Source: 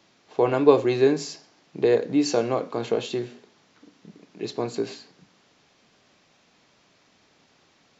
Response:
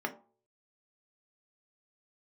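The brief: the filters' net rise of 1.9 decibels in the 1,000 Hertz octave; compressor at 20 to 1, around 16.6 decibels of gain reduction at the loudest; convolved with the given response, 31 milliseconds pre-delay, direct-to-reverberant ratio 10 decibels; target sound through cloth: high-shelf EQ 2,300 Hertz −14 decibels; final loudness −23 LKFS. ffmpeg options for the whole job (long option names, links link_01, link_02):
-filter_complex "[0:a]equalizer=frequency=1000:width_type=o:gain=5,acompressor=threshold=-25dB:ratio=20,asplit=2[link_01][link_02];[1:a]atrim=start_sample=2205,adelay=31[link_03];[link_02][link_03]afir=irnorm=-1:irlink=0,volume=-15.5dB[link_04];[link_01][link_04]amix=inputs=2:normalize=0,highshelf=frequency=2300:gain=-14,volume=9.5dB"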